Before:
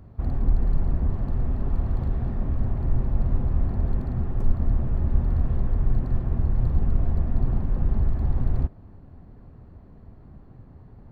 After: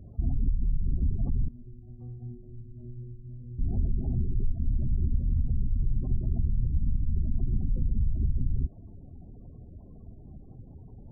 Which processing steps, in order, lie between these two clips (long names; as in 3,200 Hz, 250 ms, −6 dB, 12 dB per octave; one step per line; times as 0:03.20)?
gate on every frequency bin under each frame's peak −25 dB strong
downward compressor, threshold −21 dBFS, peak gain reduction 9 dB
0:01.48–0:03.59: stiff-string resonator 120 Hz, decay 0.57 s, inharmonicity 0.002